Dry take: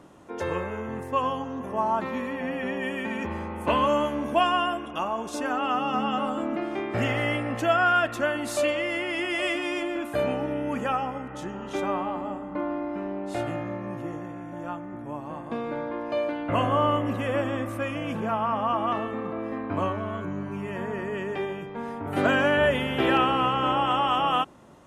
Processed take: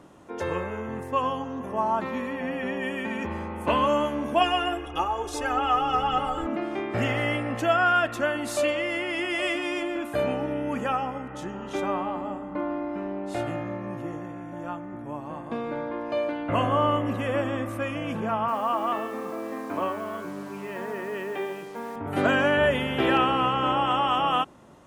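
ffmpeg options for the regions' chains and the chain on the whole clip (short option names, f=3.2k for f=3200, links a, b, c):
-filter_complex "[0:a]asettb=1/sr,asplit=3[a][b][c];[a]atrim=end=4.414[d];[b]atrim=start=4.41:end=6.47,asetpts=PTS-STARTPTS,afade=t=in:d=0.004:c=qsin,afade=t=out:st=2.056:d=0.004:c=qsin,aecho=1:1:2.4:0.77,atrim=end_sample=90846,asubboost=boost=11.5:cutoff=100,aphaser=in_gain=1:out_gain=1:delay=3.1:decay=0.27:speed=1.7:type=triangular[e];[c]atrim=start=6.466[f];[d][e]acrossfade=d=0.004:c1=hsin:c2=qsin[g];[g][f]acrossfade=d=0.004:c1=qsin:c2=hsin,asettb=1/sr,asplit=3[h][i][j];[h]atrim=end=18.484[k];[i]atrim=start=18.48:end=21.96,asetpts=PTS-STARTPTS,afade=t=in:d=0.004:c=qsin,afade=t=out:st=3.476:d=0.004:c=qsin,highpass=260,lowpass=4.1k,acrusher=bits=7:mix=0:aa=0.5[l];[j]atrim=start=21.956[m];[k][l]acrossfade=d=0.004:c1=hsin:c2=qsin[n];[n][m]acrossfade=d=0.004:c1=qsin:c2=hsin"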